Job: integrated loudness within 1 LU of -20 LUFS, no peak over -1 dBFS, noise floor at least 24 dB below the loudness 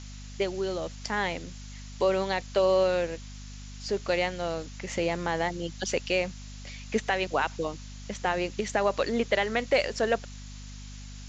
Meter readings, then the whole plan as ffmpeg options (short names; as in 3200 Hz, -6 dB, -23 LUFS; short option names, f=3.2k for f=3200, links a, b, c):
hum 50 Hz; harmonics up to 250 Hz; hum level -40 dBFS; noise floor -42 dBFS; noise floor target -53 dBFS; loudness -28.5 LUFS; peak -11.5 dBFS; loudness target -20.0 LUFS
-> -af "bandreject=f=50:t=h:w=6,bandreject=f=100:t=h:w=6,bandreject=f=150:t=h:w=6,bandreject=f=200:t=h:w=6,bandreject=f=250:t=h:w=6"
-af "afftdn=nr=11:nf=-42"
-af "volume=8.5dB"